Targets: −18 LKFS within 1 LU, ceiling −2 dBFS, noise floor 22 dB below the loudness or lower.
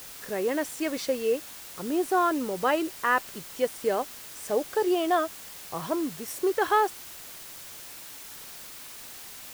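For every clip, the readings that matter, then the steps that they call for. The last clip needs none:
background noise floor −44 dBFS; target noise floor −50 dBFS; integrated loudness −28.0 LKFS; sample peak −10.5 dBFS; target loudness −18.0 LKFS
→ broadband denoise 6 dB, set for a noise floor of −44 dBFS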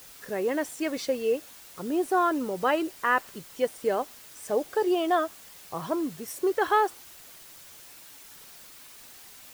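background noise floor −49 dBFS; target noise floor −50 dBFS
→ broadband denoise 6 dB, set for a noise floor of −49 dBFS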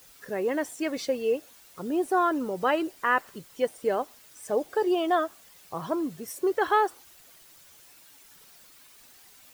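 background noise floor −54 dBFS; integrated loudness −28.0 LKFS; sample peak −11.0 dBFS; target loudness −18.0 LKFS
→ level +10 dB
brickwall limiter −2 dBFS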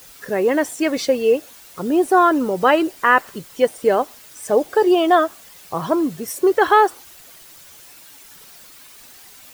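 integrated loudness −18.0 LKFS; sample peak −2.0 dBFS; background noise floor −44 dBFS

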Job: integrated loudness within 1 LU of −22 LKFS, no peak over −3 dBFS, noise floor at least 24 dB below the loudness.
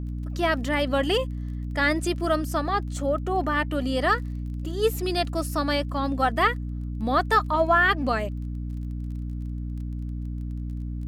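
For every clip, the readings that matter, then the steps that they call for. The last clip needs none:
crackle rate 26 per second; mains hum 60 Hz; hum harmonics up to 300 Hz; level of the hum −29 dBFS; integrated loudness −26.0 LKFS; sample peak −8.5 dBFS; target loudness −22.0 LKFS
→ click removal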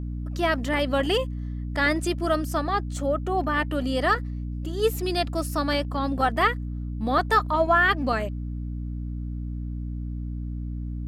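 crackle rate 0.27 per second; mains hum 60 Hz; hum harmonics up to 300 Hz; level of the hum −29 dBFS
→ hum removal 60 Hz, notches 5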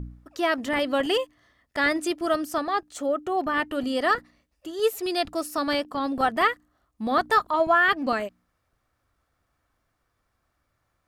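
mains hum none found; integrated loudness −25.0 LKFS; sample peak −9.0 dBFS; target loudness −22.0 LKFS
→ level +3 dB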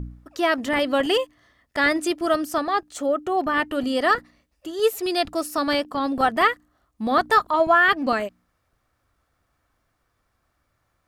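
integrated loudness −22.0 LKFS; sample peak −6.0 dBFS; background noise floor −72 dBFS

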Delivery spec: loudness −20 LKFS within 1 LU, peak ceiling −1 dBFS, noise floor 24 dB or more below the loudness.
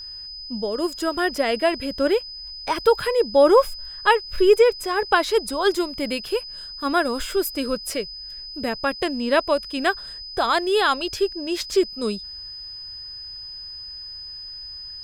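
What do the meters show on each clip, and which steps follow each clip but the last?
interfering tone 5,000 Hz; level of the tone −34 dBFS; integrated loudness −22.0 LKFS; sample peak −3.5 dBFS; target loudness −20.0 LKFS
→ notch filter 5,000 Hz, Q 30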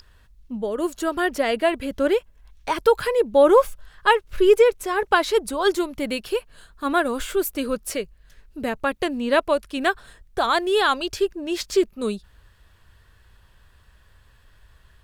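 interfering tone none found; integrated loudness −22.0 LKFS; sample peak −4.0 dBFS; target loudness −20.0 LKFS
→ level +2 dB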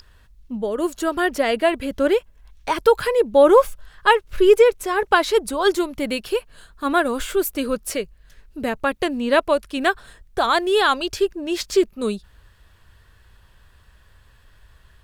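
integrated loudness −20.0 LKFS; sample peak −2.0 dBFS; background noise floor −54 dBFS

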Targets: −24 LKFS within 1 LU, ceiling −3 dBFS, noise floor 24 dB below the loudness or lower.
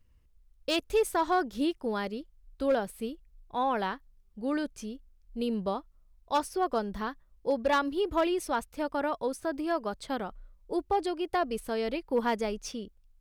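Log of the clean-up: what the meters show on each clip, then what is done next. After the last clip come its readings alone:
share of clipped samples 0.2%; peaks flattened at −19.0 dBFS; integrated loudness −31.5 LKFS; sample peak −19.0 dBFS; target loudness −24.0 LKFS
→ clipped peaks rebuilt −19 dBFS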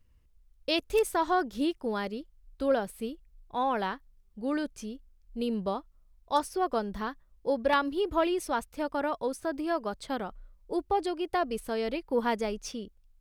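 share of clipped samples 0.0%; integrated loudness −31.0 LKFS; sample peak −12.0 dBFS; target loudness −24.0 LKFS
→ level +7 dB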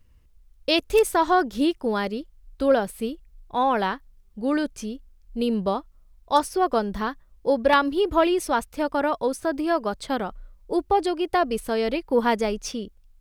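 integrated loudness −24.0 LKFS; sample peak −5.0 dBFS; background noise floor −56 dBFS

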